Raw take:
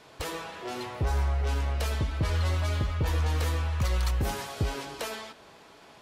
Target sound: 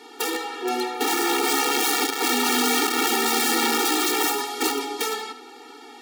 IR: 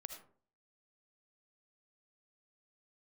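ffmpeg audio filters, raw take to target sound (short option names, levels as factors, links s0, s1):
-filter_complex "[0:a]aeval=exprs='(mod(20*val(0)+1,2)-1)/20':c=same,aeval=exprs='val(0)+0.00224*(sin(2*PI*50*n/s)+sin(2*PI*2*50*n/s)/2+sin(2*PI*3*50*n/s)/3+sin(2*PI*4*50*n/s)/4+sin(2*PI*5*50*n/s)/5)':c=same,asplit=2[s0][s1];[1:a]atrim=start_sample=2205,atrim=end_sample=4410[s2];[s1][s2]afir=irnorm=-1:irlink=0,volume=2.11[s3];[s0][s3]amix=inputs=2:normalize=0,afftfilt=real='re*eq(mod(floor(b*sr/1024/240),2),1)':imag='im*eq(mod(floor(b*sr/1024/240),2),1)':win_size=1024:overlap=0.75,volume=1.88"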